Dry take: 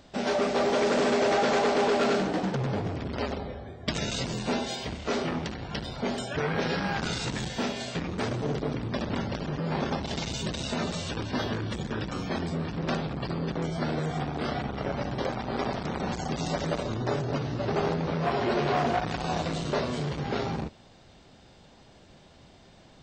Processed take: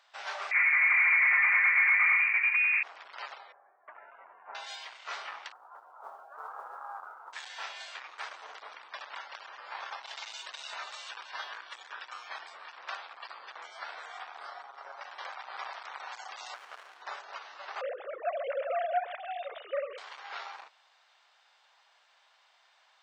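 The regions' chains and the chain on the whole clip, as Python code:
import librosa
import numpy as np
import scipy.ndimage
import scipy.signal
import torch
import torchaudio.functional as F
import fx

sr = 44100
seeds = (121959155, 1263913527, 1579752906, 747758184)

y = fx.chain(x, sr, fx.low_shelf(hz=500.0, db=8.0),
    fx.freq_invert(carrier_hz=2600), at=(0.51, 2.83))
y = fx.chain(y, sr, fx.gaussian_blur(sigma=6.6),
    fx.peak_eq(hz=490.0, db=-4.5, octaves=0.23), at=(3.52, 4.55))
y = fx.chain(y, sr, fx.cheby1_bandpass(low_hz=250.0, high_hz=1300.0, order=4),
    fx.mod_noise(seeds[0], snr_db=34), at=(5.52, 7.33))
y = fx.chain(y, sr, fx.highpass(hz=150.0, slope=12),
    fx.peak_eq(hz=2700.0, db=-12.0, octaves=1.4),
    fx.comb(ms=7.3, depth=0.37), at=(14.39, 15.01))
y = fx.chain(y, sr, fx.highpass(hz=290.0, slope=6),
    fx.peak_eq(hz=570.0, db=-8.5, octaves=0.24),
    fx.running_max(window=33), at=(16.54, 17.02))
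y = fx.chain(y, sr, fx.sine_speech(),
    fx.low_shelf_res(hz=720.0, db=9.5, q=3.0),
    fx.echo_single(ms=133, db=-15.5), at=(17.81, 19.98))
y = scipy.signal.sosfilt(scipy.signal.butter(4, 960.0, 'highpass', fs=sr, output='sos'), y)
y = fx.high_shelf(y, sr, hz=4400.0, db=-12.0)
y = F.gain(torch.from_numpy(y), -1.5).numpy()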